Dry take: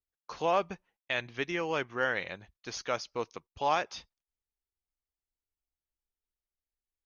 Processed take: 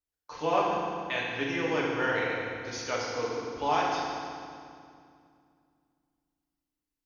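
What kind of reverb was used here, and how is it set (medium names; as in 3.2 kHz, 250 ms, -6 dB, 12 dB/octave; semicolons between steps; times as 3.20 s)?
FDN reverb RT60 2.3 s, low-frequency decay 1.45×, high-frequency decay 0.85×, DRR -6 dB; trim -3.5 dB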